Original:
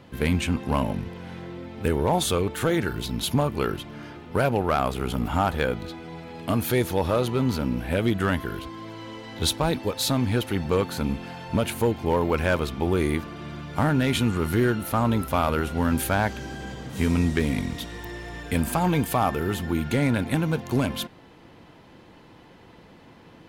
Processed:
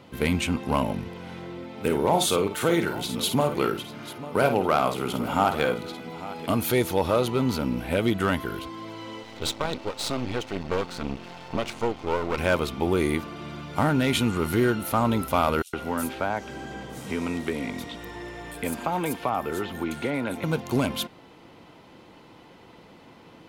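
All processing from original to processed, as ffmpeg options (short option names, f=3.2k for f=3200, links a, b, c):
-filter_complex "[0:a]asettb=1/sr,asplit=3[a][b][c];[a]atrim=end=1.644[d];[b]atrim=start=1.64:end=6.47,asetpts=PTS-STARTPTS,afade=t=in:d=0.004:c=qsin,afade=t=out:st=4.826:d=0.004:c=qsin,highpass=120,aecho=1:1:53|844:0.376|0.168,atrim=end_sample=213003[e];[c]atrim=start=6.466[f];[d][e]acrossfade=d=0.004:c1=hsin:c2=qsin[g];[g][f]acrossfade=d=0.004:c1=qsin:c2=hsin,asettb=1/sr,asplit=3[h][i][j];[h]atrim=end=9.234[k];[i]atrim=start=9.23:end=12.38,asetpts=PTS-STARTPTS,afade=t=in:d=0.004:c=qsin,afade=t=out:st=3.146:d=0.004:c=qsin,lowpass=f=6.8k:w=0.5412,lowpass=f=6.8k:w=1.3066,aeval=exprs='max(val(0),0)':c=same[l];[j]atrim=start=12.376[m];[k][l]acrossfade=d=0.004:c1=hsin:c2=qsin[n];[n][m]acrossfade=d=0.004:c1=qsin:c2=hsin,asettb=1/sr,asplit=3[o][p][q];[o]atrim=end=15.624[r];[p]atrim=start=15.62:end=20.44,asetpts=PTS-STARTPTS,afade=t=in:d=0.004:c=qsin,afade=t=out:st=4.816:d=0.004:c=qsin,highshelf=f=5.1k:g=-5,acrossover=split=260|1100[s][t][u];[s]acompressor=threshold=-37dB:ratio=4[v];[t]acompressor=threshold=-26dB:ratio=4[w];[u]acompressor=threshold=-33dB:ratio=4[x];[v][w][x]amix=inputs=3:normalize=0,acrossover=split=4200[y][z];[y]adelay=110[aa];[aa][z]amix=inputs=2:normalize=0,atrim=end_sample=212562[ab];[q]atrim=start=20.436[ac];[r][ab]acrossfade=d=0.004:c1=hsin:c2=qsin[ad];[ad][ac]acrossfade=d=0.004:c1=qsin:c2=hsin,lowshelf=f=130:g=-8.5,bandreject=f=1.7k:w=9.5,volume=1.5dB"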